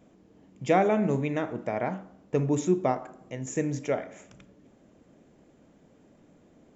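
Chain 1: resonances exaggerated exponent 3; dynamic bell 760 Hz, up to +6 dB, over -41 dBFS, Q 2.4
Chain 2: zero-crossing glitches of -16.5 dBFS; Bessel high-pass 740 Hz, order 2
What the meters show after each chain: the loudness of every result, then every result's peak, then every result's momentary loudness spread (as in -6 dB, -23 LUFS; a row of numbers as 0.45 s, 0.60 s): -26.5 LUFS, -28.0 LUFS; -9.0 dBFS, -10.0 dBFS; 17 LU, 6 LU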